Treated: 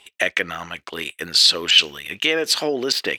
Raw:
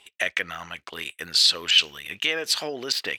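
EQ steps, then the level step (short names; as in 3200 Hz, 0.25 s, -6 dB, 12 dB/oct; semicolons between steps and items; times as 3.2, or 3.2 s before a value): dynamic EQ 320 Hz, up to +7 dB, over -46 dBFS, Q 0.71; +4.0 dB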